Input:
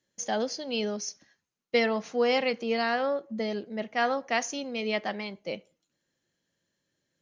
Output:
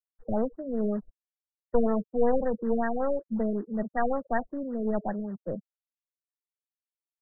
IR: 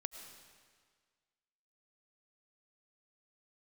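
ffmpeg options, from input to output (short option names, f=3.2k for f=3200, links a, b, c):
-filter_complex "[0:a]aeval=exprs='0.237*(cos(1*acos(clip(val(0)/0.237,-1,1)))-cos(1*PI/2))+0.0335*(cos(4*acos(clip(val(0)/0.237,-1,1)))-cos(4*PI/2))':c=same,afftfilt=real='re*gte(hypot(re,im),0.0282)':imag='im*gte(hypot(re,im),0.0282)':win_size=1024:overlap=0.75,bass=f=250:g=10,treble=f=4k:g=-12,acrossover=split=200|480|1700[a][b][c][d];[b]asoftclip=type=tanh:threshold=-24.5dB[e];[a][e][c][d]amix=inputs=4:normalize=0,acrusher=bits=4:mode=log:mix=0:aa=0.000001,afftfilt=real='re*lt(b*sr/1024,620*pow(2000/620,0.5+0.5*sin(2*PI*5.3*pts/sr)))':imag='im*lt(b*sr/1024,620*pow(2000/620,0.5+0.5*sin(2*PI*5.3*pts/sr)))':win_size=1024:overlap=0.75"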